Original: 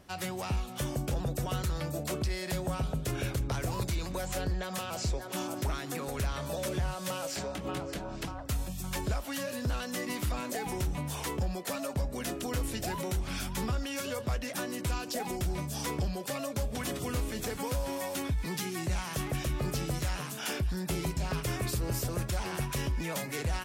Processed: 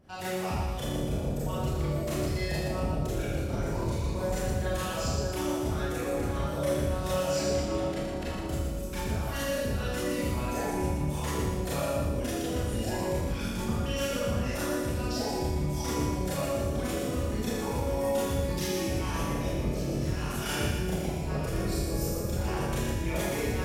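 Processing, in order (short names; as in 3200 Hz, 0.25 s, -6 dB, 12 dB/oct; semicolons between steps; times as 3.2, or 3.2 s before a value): formant sharpening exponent 1.5; split-band echo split 500 Hz, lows 0.704 s, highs 0.117 s, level -5.5 dB; Schroeder reverb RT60 0.89 s, combs from 27 ms, DRR -8 dB; gain -5 dB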